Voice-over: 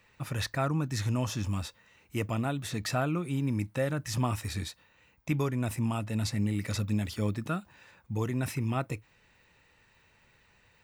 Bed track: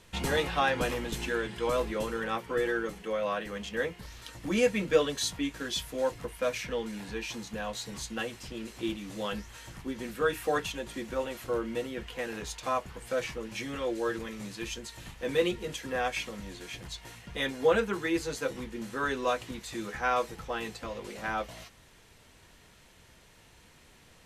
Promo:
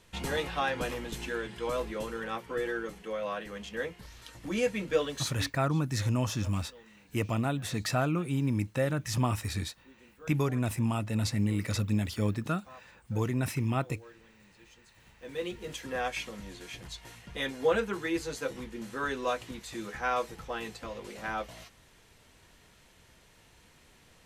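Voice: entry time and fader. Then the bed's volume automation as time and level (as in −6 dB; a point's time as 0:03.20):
5.00 s, +1.0 dB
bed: 0:05.30 −3.5 dB
0:05.64 −21.5 dB
0:14.77 −21.5 dB
0:15.75 −2 dB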